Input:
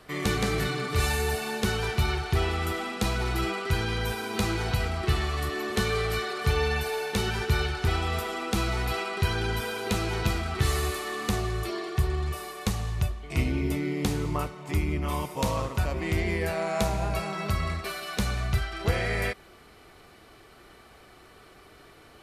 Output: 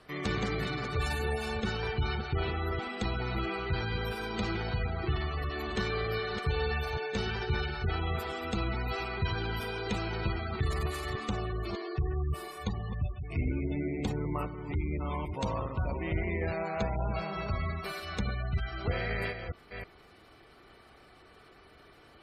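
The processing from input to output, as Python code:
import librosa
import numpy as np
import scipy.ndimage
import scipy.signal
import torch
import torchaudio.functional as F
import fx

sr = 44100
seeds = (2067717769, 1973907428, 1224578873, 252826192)

y = fx.reverse_delay(x, sr, ms=320, wet_db=-8.0)
y = fx.cheby_harmonics(y, sr, harmonics=(4, 5), levels_db=(-19, -26), full_scale_db=-12.5)
y = fx.spec_gate(y, sr, threshold_db=-25, keep='strong')
y = y * librosa.db_to_amplitude(-6.5)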